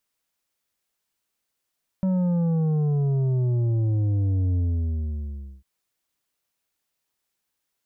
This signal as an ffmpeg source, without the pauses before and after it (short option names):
-f lavfi -i "aevalsrc='0.0944*clip((3.6-t)/1.07,0,1)*tanh(2.37*sin(2*PI*190*3.6/log(65/190)*(exp(log(65/190)*t/3.6)-1)))/tanh(2.37)':d=3.6:s=44100"